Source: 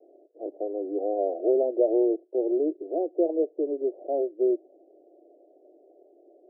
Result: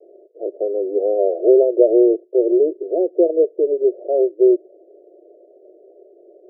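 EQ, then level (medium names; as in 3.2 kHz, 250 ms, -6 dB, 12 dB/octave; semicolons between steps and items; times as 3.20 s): high-order bell 510 Hz +15.5 dB 1.3 oct; static phaser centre 390 Hz, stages 4; -4.0 dB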